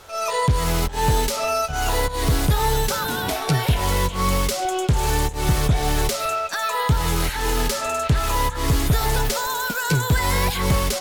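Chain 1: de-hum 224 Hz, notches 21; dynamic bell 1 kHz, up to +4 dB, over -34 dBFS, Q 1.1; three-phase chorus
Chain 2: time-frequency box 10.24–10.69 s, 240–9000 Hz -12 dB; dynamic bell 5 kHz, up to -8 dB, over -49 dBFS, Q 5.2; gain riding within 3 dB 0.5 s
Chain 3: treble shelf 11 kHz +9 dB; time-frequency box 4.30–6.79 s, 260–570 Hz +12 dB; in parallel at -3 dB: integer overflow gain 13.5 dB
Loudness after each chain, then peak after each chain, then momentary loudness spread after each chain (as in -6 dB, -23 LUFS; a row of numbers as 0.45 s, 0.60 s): -23.5 LUFS, -22.0 LUFS, -16.5 LUFS; -8.5 dBFS, -9.5 dBFS, -3.0 dBFS; 3 LU, 2 LU, 3 LU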